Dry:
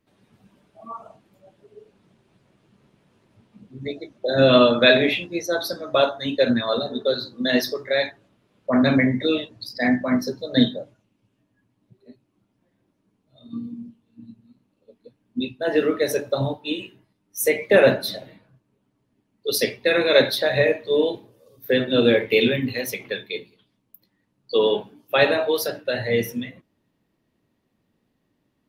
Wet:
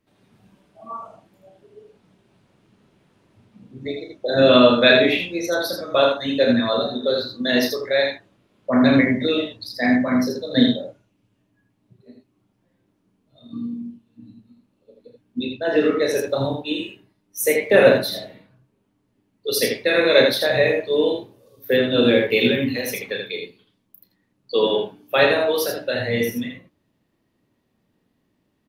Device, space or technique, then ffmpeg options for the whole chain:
slapback doubling: -filter_complex "[0:a]asplit=3[link_01][link_02][link_03];[link_02]adelay=33,volume=-7dB[link_04];[link_03]adelay=80,volume=-4.5dB[link_05];[link_01][link_04][link_05]amix=inputs=3:normalize=0,asettb=1/sr,asplit=3[link_06][link_07][link_08];[link_06]atrim=end=15.454[link_09];[link_07]atrim=start=15.45:end=16.16,asetpts=PTS-STARTPTS,afade=type=in:duration=0.004:curve=qsin,afade=type=out:start_time=0.706:duration=0.004:curve=qsin,lowpass=7100[link_10];[link_08]atrim=start=16.156[link_11];[link_09][link_10]acrossfade=duration=0.004:curve1=hsin:curve2=qsin[link_12];[link_12][link_11]acrossfade=duration=0.004:curve1=qsin:curve2=hsin"

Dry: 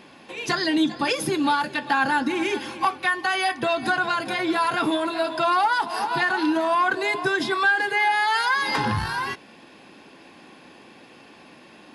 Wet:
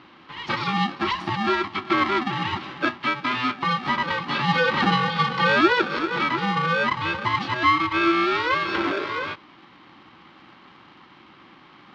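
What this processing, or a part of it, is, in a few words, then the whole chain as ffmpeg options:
ring modulator pedal into a guitar cabinet: -filter_complex "[0:a]asettb=1/sr,asplit=3[link_01][link_02][link_03];[link_01]atrim=end=4.294[link_04];[link_02]atrim=start=4.29:end=5.99,asetpts=PTS-STARTPTS,afade=type=in:duration=0.004:curve=qsin,afade=type=out:start_time=1.696:duration=0.004:curve=qsin,equalizer=frequency=250:width_type=o:width=0.67:gain=11,equalizer=frequency=1000:width_type=o:width=0.67:gain=4,equalizer=frequency=4000:width_type=o:width=0.67:gain=9[link_05];[link_03]atrim=start=5.986[link_06];[link_04][link_05]acrossfade=duration=0.004:curve1=hsin:curve2=qsin[link_07];[link_07][link_06]acrossfade=duration=0.004:curve1=qsin:curve2=hsin,aeval=exprs='val(0)*sgn(sin(2*PI*500*n/s))':channel_layout=same,highpass=100,equalizer=frequency=330:width_type=q:width=4:gain=7,equalizer=frequency=680:width_type=q:width=4:gain=-9,equalizer=frequency=1100:width_type=q:width=4:gain=7,lowpass=frequency=4000:width=0.5412,lowpass=frequency=4000:width=1.3066,volume=-2dB"

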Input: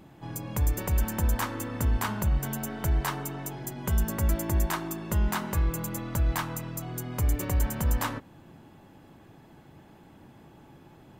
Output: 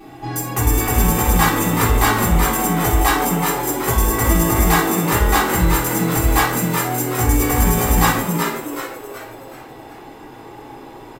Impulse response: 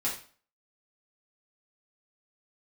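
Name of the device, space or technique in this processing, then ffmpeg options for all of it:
microphone above a desk: -filter_complex "[0:a]lowshelf=frequency=240:gain=-5,aecho=1:1:2.6:0.76[link_01];[1:a]atrim=start_sample=2205[link_02];[link_01][link_02]afir=irnorm=-1:irlink=0,asplit=6[link_03][link_04][link_05][link_06][link_07][link_08];[link_04]adelay=375,afreqshift=120,volume=-6dB[link_09];[link_05]adelay=750,afreqshift=240,volume=-13.3dB[link_10];[link_06]adelay=1125,afreqshift=360,volume=-20.7dB[link_11];[link_07]adelay=1500,afreqshift=480,volume=-28dB[link_12];[link_08]adelay=1875,afreqshift=600,volume=-35.3dB[link_13];[link_03][link_09][link_10][link_11][link_12][link_13]amix=inputs=6:normalize=0,volume=8dB"

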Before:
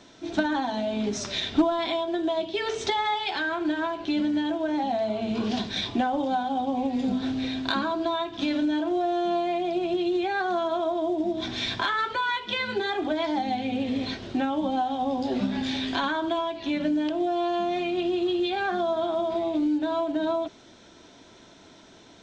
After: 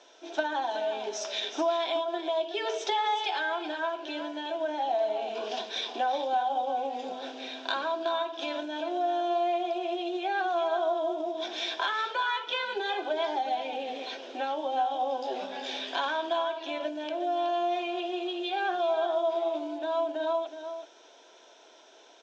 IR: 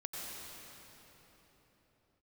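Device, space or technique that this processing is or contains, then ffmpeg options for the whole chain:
phone speaker on a table: -af "highpass=frequency=450:width=0.5412,highpass=frequency=450:width=1.3066,equalizer=frequency=1200:width_type=q:width=4:gain=-6,equalizer=frequency=2000:width_type=q:width=4:gain=-8,equalizer=frequency=4300:width_type=q:width=4:gain=-8,lowpass=frequency=6600:width=0.5412,lowpass=frequency=6600:width=1.3066,aecho=1:1:371:0.316"

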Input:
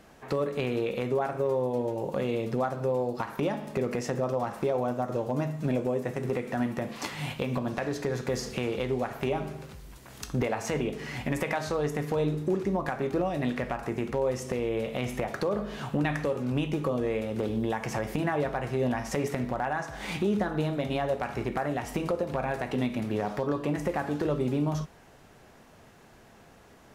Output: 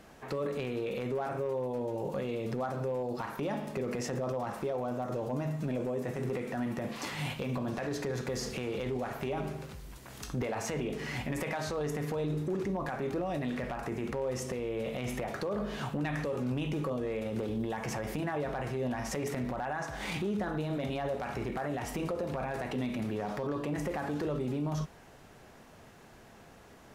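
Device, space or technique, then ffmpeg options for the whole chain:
clipper into limiter: -af "asoftclip=type=hard:threshold=-20dB,alimiter=level_in=2.5dB:limit=-24dB:level=0:latency=1:release=12,volume=-2.5dB"

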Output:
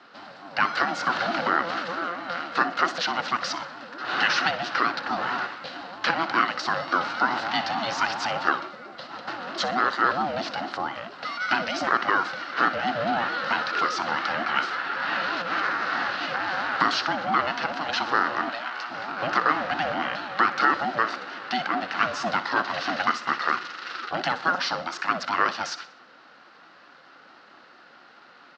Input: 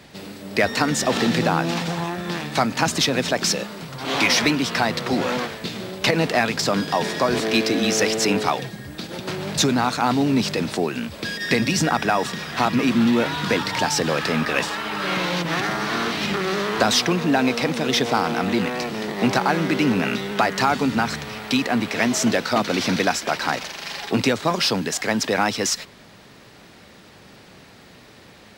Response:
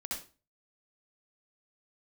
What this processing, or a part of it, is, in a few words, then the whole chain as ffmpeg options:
voice changer toy: -filter_complex "[0:a]aeval=exprs='val(0)*sin(2*PI*420*n/s+420*0.2/4.5*sin(2*PI*4.5*n/s))':channel_layout=same,highpass=410,equalizer=frequency=430:width_type=q:width=4:gain=-5,equalizer=frequency=620:width_type=q:width=4:gain=-9,equalizer=frequency=940:width_type=q:width=4:gain=-5,equalizer=frequency=1400:width_type=q:width=4:gain=7,equalizer=frequency=2300:width_type=q:width=4:gain=-9,equalizer=frequency=3400:width_type=q:width=4:gain=-8,lowpass=frequency=4100:width=0.5412,lowpass=frequency=4100:width=1.3066,asplit=3[link_01][link_02][link_03];[link_01]afade=type=out:start_time=18.49:duration=0.02[link_04];[link_02]highpass=frequency=1200:poles=1,afade=type=in:start_time=18.49:duration=0.02,afade=type=out:start_time=18.89:duration=0.02[link_05];[link_03]afade=type=in:start_time=18.89:duration=0.02[link_06];[link_04][link_05][link_06]amix=inputs=3:normalize=0,aecho=1:1:62|124|186|248:0.178|0.08|0.036|0.0162,volume=2.5dB"

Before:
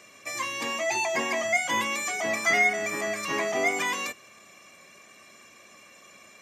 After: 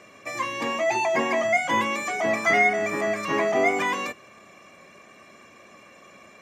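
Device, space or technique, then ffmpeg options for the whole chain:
through cloth: -af "highshelf=frequency=2800:gain=-14,volume=6.5dB"

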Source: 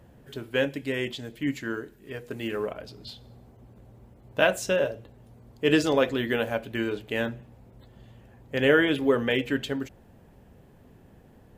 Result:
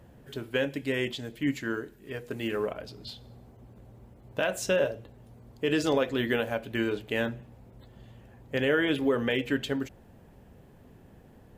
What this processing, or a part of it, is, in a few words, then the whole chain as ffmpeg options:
clipper into limiter: -af "asoftclip=type=hard:threshold=-7dB,alimiter=limit=-15dB:level=0:latency=1:release=172"

